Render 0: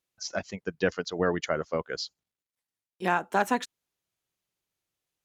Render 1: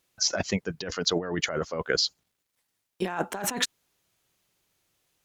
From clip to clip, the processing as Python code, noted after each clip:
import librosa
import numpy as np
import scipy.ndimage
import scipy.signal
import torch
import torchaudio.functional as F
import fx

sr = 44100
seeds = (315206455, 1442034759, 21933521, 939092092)

y = fx.over_compress(x, sr, threshold_db=-35.0, ratio=-1.0)
y = y * librosa.db_to_amplitude(6.5)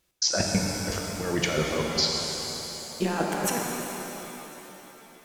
y = fx.step_gate(x, sr, bpm=138, pattern='x.xx.x..x..xxxxx', floor_db=-60.0, edge_ms=4.5)
y = fx.low_shelf(y, sr, hz=110.0, db=9.5)
y = fx.rev_shimmer(y, sr, seeds[0], rt60_s=3.5, semitones=7, shimmer_db=-8, drr_db=-0.5)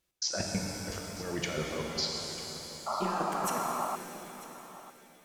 y = fx.spec_paint(x, sr, seeds[1], shape='noise', start_s=2.86, length_s=1.1, low_hz=570.0, high_hz=1400.0, level_db=-26.0)
y = y + 10.0 ** (-17.0 / 20.0) * np.pad(y, (int(946 * sr / 1000.0), 0))[:len(y)]
y = y * librosa.db_to_amplitude(-8.0)